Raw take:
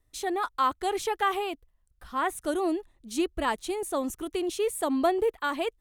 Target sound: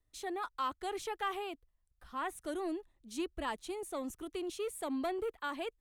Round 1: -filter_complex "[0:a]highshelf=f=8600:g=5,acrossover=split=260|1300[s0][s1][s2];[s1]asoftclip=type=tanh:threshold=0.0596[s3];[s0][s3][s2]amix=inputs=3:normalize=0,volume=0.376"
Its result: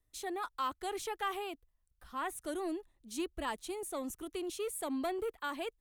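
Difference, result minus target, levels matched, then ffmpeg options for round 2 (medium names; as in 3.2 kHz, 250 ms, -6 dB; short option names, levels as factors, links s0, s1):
8 kHz band +4.0 dB
-filter_complex "[0:a]highshelf=f=8600:g=-3.5,acrossover=split=260|1300[s0][s1][s2];[s1]asoftclip=type=tanh:threshold=0.0596[s3];[s0][s3][s2]amix=inputs=3:normalize=0,volume=0.376"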